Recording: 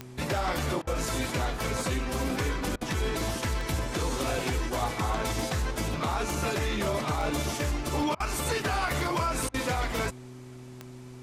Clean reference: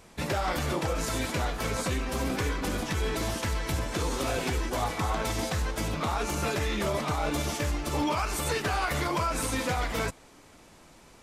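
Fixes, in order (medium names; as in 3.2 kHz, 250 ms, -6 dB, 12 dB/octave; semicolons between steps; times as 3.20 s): de-click; de-hum 125.5 Hz, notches 3; interpolate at 0.82/2.76/8.15/9.49 s, 50 ms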